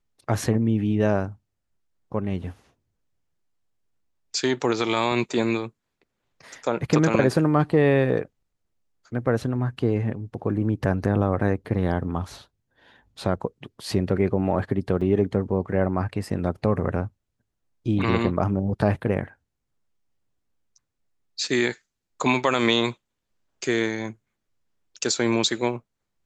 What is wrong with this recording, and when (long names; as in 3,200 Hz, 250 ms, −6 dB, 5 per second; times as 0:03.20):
0:15.01–0:15.02: drop-out 5.2 ms